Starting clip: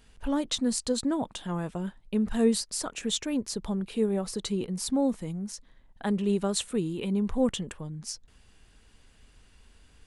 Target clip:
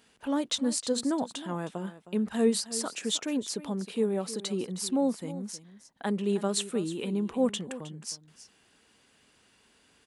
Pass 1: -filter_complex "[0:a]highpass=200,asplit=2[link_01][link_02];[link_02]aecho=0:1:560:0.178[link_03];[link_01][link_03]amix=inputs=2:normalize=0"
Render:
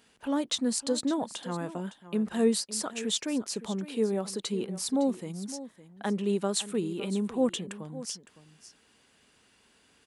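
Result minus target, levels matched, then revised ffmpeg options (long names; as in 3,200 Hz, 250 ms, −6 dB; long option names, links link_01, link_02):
echo 246 ms late
-filter_complex "[0:a]highpass=200,asplit=2[link_01][link_02];[link_02]aecho=0:1:314:0.178[link_03];[link_01][link_03]amix=inputs=2:normalize=0"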